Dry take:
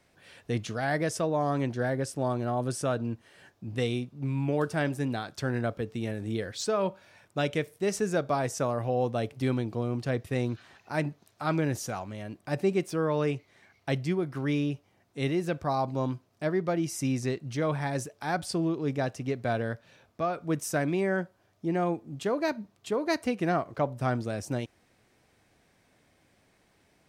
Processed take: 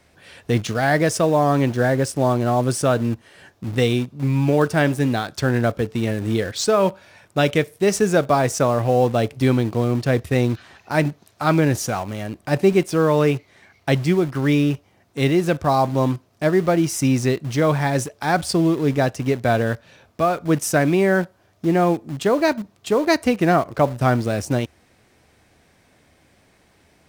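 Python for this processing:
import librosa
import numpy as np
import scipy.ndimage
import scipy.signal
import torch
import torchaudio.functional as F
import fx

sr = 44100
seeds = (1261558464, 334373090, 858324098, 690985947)

p1 = fx.peak_eq(x, sr, hz=75.0, db=8.0, octaves=0.21)
p2 = fx.quant_dither(p1, sr, seeds[0], bits=6, dither='none')
p3 = p1 + (p2 * librosa.db_to_amplitude(-12.0))
y = p3 * librosa.db_to_amplitude(8.5)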